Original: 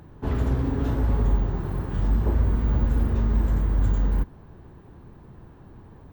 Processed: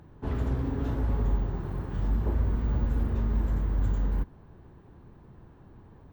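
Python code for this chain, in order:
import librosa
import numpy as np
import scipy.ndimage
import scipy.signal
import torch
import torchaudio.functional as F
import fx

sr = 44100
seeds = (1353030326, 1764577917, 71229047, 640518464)

y = fx.high_shelf(x, sr, hz=8600.0, db=-6.0)
y = y * librosa.db_to_amplitude(-5.0)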